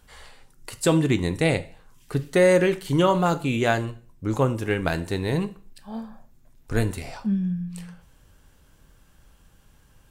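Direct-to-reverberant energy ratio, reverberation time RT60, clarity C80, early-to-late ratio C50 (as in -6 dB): 11.0 dB, 0.45 s, 21.0 dB, 16.5 dB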